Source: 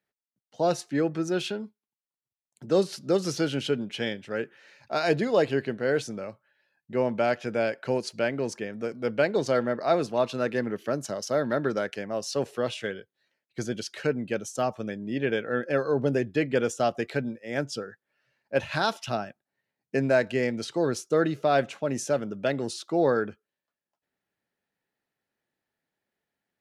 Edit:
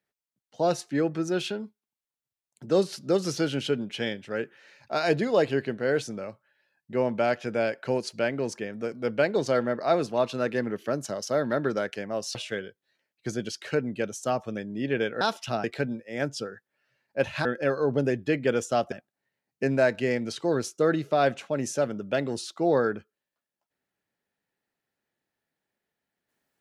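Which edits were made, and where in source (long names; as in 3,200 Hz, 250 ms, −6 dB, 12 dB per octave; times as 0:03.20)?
0:12.35–0:12.67: remove
0:15.53–0:17.00: swap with 0:18.81–0:19.24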